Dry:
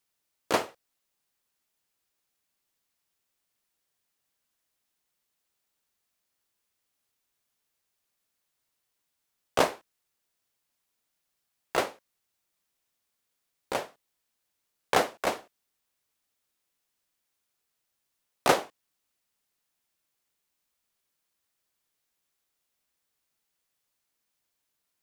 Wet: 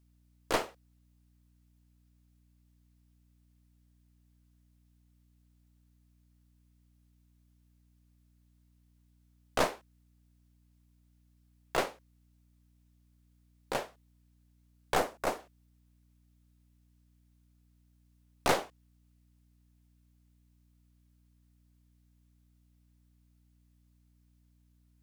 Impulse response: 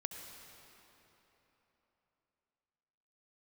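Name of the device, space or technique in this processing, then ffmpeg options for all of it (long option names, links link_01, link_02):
valve amplifier with mains hum: -filter_complex "[0:a]aeval=exprs='(tanh(8.91*val(0)+0.55)-tanh(0.55))/8.91':channel_layout=same,aeval=exprs='val(0)+0.000562*(sin(2*PI*60*n/s)+sin(2*PI*2*60*n/s)/2+sin(2*PI*3*60*n/s)/3+sin(2*PI*4*60*n/s)/4+sin(2*PI*5*60*n/s)/5)':channel_layout=same,asettb=1/sr,asplit=3[link_01][link_02][link_03];[link_01]atrim=end=14.964[link_04];[link_02]atrim=start=14.96:end=15.4,asetpts=PTS-STARTPTS,afade=type=in:duration=0.004:curve=qsin,afade=type=out:start_time=0.436:duration=0.004:curve=qsin,equalizer=frequency=3200:width_type=o:width=1.6:gain=-5.5[link_05];[link_03]atrim=start=15.396[link_06];[link_04][link_05]acrossfade=duration=0.004:curve1=hsin:curve2=qsin[link_07];[link_07][link_06]acrossfade=duration=0.004:curve1=qsin:curve2=hsin"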